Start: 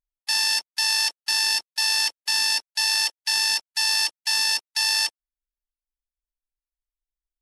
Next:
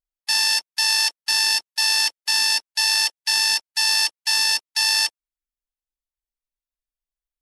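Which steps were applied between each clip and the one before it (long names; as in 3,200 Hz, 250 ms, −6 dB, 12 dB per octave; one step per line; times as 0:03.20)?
expander for the loud parts 1.5 to 1, over −34 dBFS
level +3 dB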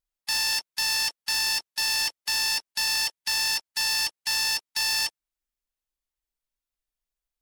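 in parallel at +2.5 dB: brickwall limiter −17 dBFS, peak gain reduction 8 dB
on the sum: soft clipping −17.5 dBFS, distortion −10 dB
level −5 dB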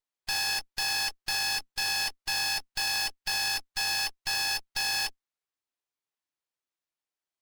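frequency shifter −90 Hz
Chebyshev high-pass with heavy ripple 260 Hz, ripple 3 dB
windowed peak hold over 3 samples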